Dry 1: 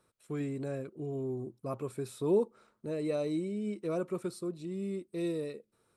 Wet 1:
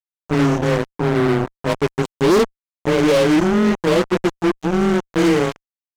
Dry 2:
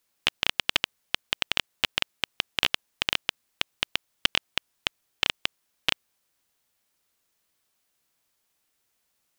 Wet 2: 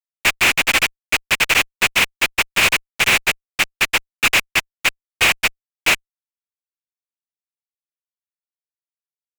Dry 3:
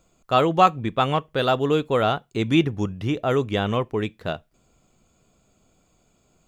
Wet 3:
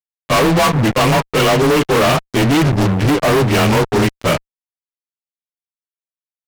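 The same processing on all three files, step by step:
frequency axis rescaled in octaves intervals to 92%; fuzz box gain 40 dB, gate -39 dBFS; peak normalisation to -9 dBFS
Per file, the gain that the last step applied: +2.0 dB, +2.0 dB, +2.0 dB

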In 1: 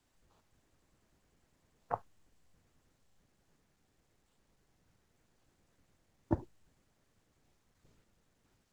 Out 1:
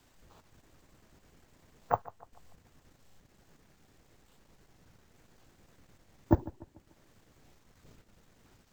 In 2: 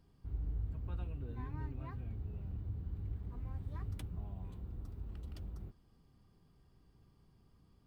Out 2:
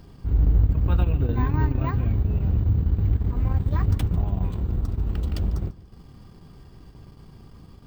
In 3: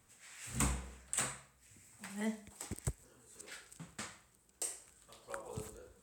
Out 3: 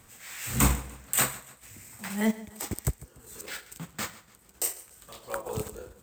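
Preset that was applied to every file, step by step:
careless resampling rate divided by 2×, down filtered, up hold; transient shaper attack -5 dB, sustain -9 dB; modulated delay 146 ms, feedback 43%, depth 70 cents, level -19 dB; peak normalisation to -9 dBFS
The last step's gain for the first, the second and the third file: +12.5 dB, +22.0 dB, +14.0 dB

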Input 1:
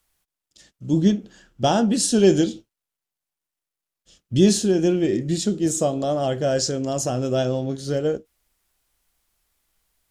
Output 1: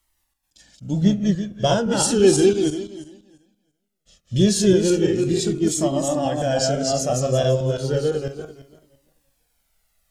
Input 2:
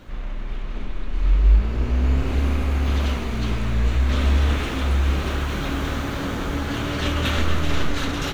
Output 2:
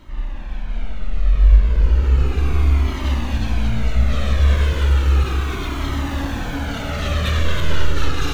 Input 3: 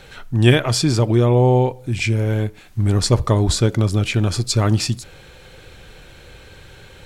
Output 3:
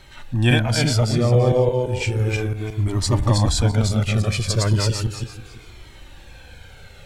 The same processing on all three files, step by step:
backward echo that repeats 169 ms, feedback 42%, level -2 dB; Shepard-style flanger falling 0.34 Hz; normalise loudness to -20 LUFS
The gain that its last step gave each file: +4.0 dB, +3.0 dB, +0.5 dB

